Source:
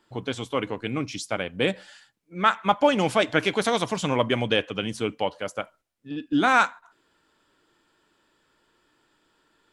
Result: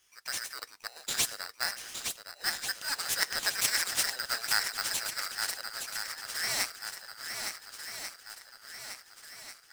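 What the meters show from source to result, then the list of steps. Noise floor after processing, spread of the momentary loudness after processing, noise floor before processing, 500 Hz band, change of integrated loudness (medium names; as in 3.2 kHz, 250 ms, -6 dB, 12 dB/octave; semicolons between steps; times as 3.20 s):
-58 dBFS, 16 LU, -69 dBFS, -23.0 dB, -7.5 dB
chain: inverse Chebyshev high-pass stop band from 660 Hz, stop band 80 dB; shuffle delay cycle 1441 ms, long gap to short 1.5:1, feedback 47%, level -6.5 dB; polarity switched at an audio rate 1.7 kHz; trim +8.5 dB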